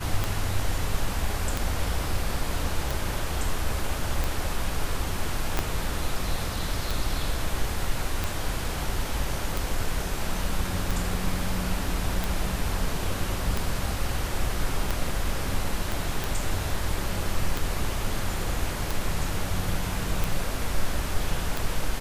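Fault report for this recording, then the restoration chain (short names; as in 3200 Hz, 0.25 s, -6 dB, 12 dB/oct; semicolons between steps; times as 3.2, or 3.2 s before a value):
tick 45 rpm
5.59 pop -8 dBFS
15.92 pop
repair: de-click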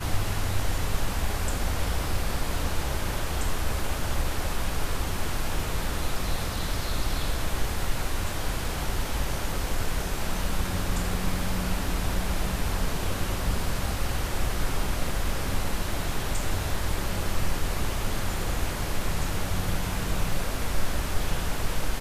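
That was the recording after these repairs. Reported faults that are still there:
5.59 pop
15.92 pop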